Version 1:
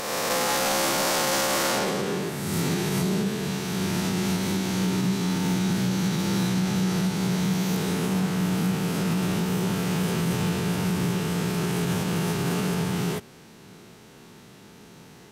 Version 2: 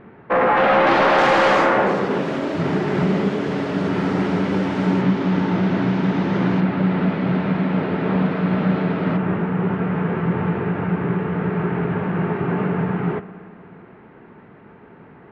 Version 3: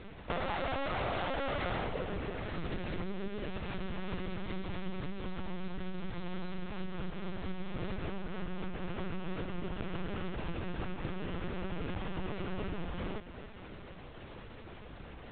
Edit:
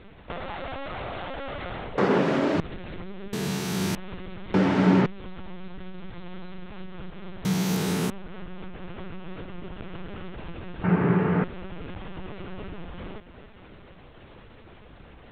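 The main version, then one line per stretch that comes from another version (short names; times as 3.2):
3
1.98–2.6 from 2
3.33–3.95 from 1
4.54–5.06 from 2
7.45–8.1 from 1
10.84–11.44 from 2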